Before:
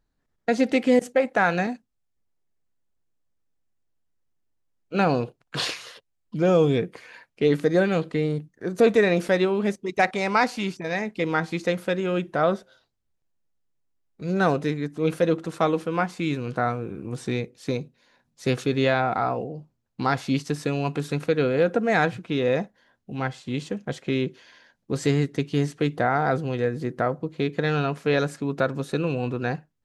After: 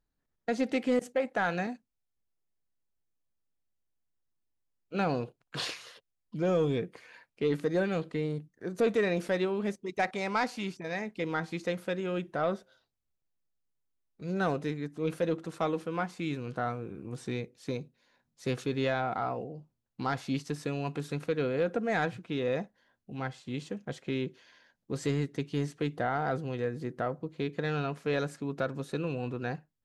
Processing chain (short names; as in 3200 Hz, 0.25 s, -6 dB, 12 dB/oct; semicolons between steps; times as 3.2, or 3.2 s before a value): soft clip -9.5 dBFS, distortion -23 dB; gain -7.5 dB